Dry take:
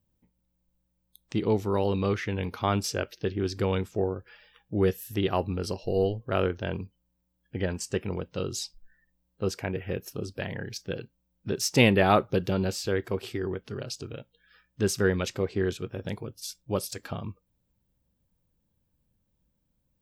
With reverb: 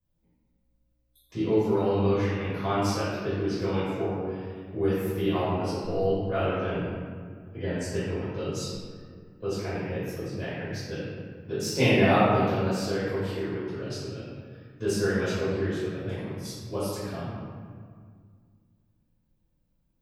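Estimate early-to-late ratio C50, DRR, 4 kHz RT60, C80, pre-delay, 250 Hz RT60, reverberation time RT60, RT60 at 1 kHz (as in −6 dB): −3.5 dB, −15.0 dB, 1.1 s, −1.0 dB, 4 ms, 2.6 s, 2.0 s, 1.9 s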